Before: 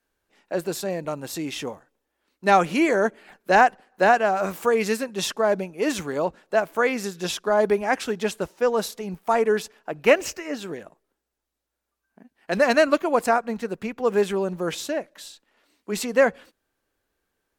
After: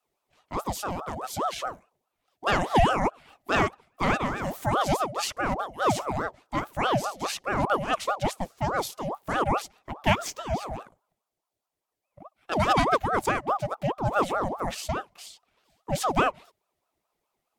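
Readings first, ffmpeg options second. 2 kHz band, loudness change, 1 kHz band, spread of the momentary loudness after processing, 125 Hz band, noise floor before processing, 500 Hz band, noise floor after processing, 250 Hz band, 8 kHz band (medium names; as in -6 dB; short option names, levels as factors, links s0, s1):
-5.0 dB, -4.5 dB, -1.5 dB, 10 LU, +5.5 dB, -81 dBFS, -8.0 dB, -84 dBFS, -4.5 dB, -3.0 dB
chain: -af "equalizer=f=125:t=o:w=1:g=-5,equalizer=f=250:t=o:w=1:g=11,equalizer=f=500:t=o:w=1:g=-6,equalizer=f=1000:t=o:w=1:g=-10,aeval=exprs='val(0)*sin(2*PI*690*n/s+690*0.5/4.8*sin(2*PI*4.8*n/s))':c=same"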